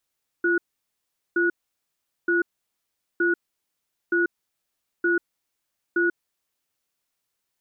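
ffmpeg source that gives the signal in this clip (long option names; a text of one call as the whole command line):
ffmpeg -f lavfi -i "aevalsrc='0.0891*(sin(2*PI*345*t)+sin(2*PI*1460*t))*clip(min(mod(t,0.92),0.14-mod(t,0.92))/0.005,0,1)':duration=5.73:sample_rate=44100" out.wav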